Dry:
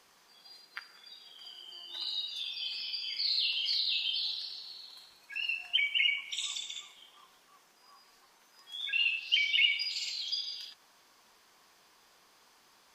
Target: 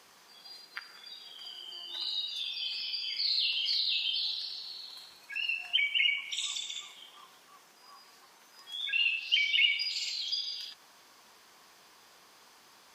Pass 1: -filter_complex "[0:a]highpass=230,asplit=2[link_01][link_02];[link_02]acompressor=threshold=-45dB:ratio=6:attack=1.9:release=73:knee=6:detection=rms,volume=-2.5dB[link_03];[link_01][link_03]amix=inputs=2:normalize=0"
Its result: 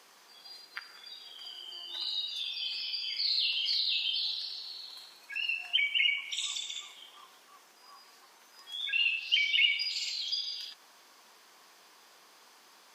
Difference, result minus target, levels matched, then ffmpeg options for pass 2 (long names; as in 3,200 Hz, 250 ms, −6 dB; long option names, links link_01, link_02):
125 Hz band −7.0 dB
-filter_complex "[0:a]highpass=63,asplit=2[link_01][link_02];[link_02]acompressor=threshold=-45dB:ratio=6:attack=1.9:release=73:knee=6:detection=rms,volume=-2.5dB[link_03];[link_01][link_03]amix=inputs=2:normalize=0"